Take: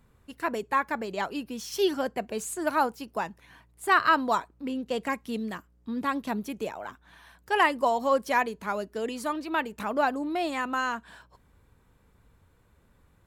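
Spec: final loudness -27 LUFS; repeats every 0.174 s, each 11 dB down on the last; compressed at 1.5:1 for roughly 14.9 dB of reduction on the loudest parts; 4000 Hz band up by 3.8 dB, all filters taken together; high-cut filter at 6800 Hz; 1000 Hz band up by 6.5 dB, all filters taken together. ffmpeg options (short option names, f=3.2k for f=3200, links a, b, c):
-af "lowpass=6.8k,equalizer=f=1k:t=o:g=7.5,equalizer=f=4k:t=o:g=5,acompressor=threshold=-55dB:ratio=1.5,aecho=1:1:174|348|522:0.282|0.0789|0.0221,volume=10dB"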